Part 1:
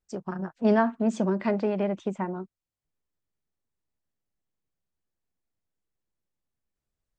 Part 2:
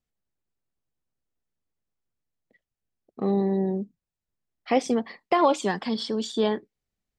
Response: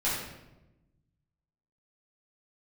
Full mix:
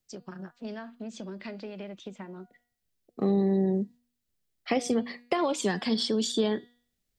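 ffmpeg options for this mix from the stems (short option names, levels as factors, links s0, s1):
-filter_complex "[0:a]equalizer=f=4100:w=0.73:g=13.5,acompressor=threshold=0.0355:ratio=6,volume=1.33[s0];[1:a]highshelf=f=7000:g=8.5,volume=1.26,asplit=2[s1][s2];[s2]apad=whole_len=316993[s3];[s0][s3]sidechaingate=range=0.355:threshold=0.00501:ratio=16:detection=peak[s4];[s4][s1]amix=inputs=2:normalize=0,equalizer=f=940:w=1.7:g=-5.5,bandreject=f=241.1:t=h:w=4,bandreject=f=482.2:t=h:w=4,bandreject=f=723.3:t=h:w=4,bandreject=f=964.4:t=h:w=4,bandreject=f=1205.5:t=h:w=4,bandreject=f=1446.6:t=h:w=4,bandreject=f=1687.7:t=h:w=4,bandreject=f=1928.8:t=h:w=4,bandreject=f=2169.9:t=h:w=4,bandreject=f=2411:t=h:w=4,bandreject=f=2652.1:t=h:w=4,bandreject=f=2893.2:t=h:w=4,bandreject=f=3134.3:t=h:w=4,bandreject=f=3375.4:t=h:w=4,bandreject=f=3616.5:t=h:w=4,bandreject=f=3857.6:t=h:w=4,bandreject=f=4098.7:t=h:w=4,bandreject=f=4339.8:t=h:w=4,bandreject=f=4580.9:t=h:w=4,bandreject=f=4822:t=h:w=4,acrossover=split=170[s5][s6];[s6]acompressor=threshold=0.0708:ratio=10[s7];[s5][s7]amix=inputs=2:normalize=0"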